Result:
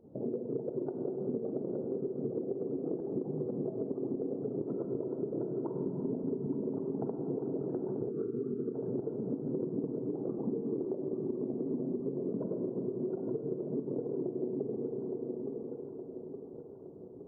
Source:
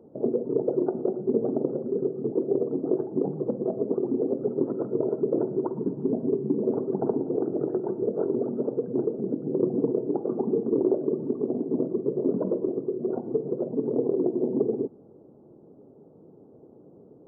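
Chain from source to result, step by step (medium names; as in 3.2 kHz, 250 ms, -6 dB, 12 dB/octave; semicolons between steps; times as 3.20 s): volume shaper 130 bpm, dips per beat 2, -10 dB, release 102 ms; thinning echo 866 ms, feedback 64%, high-pass 310 Hz, level -10 dB; Schroeder reverb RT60 3.8 s, combs from 33 ms, DRR 4.5 dB; time-frequency box 8.11–8.75 s, 490–1100 Hz -17 dB; compression, threshold -28 dBFS, peak gain reduction 10.5 dB; bass shelf 200 Hz +11 dB; trim -6.5 dB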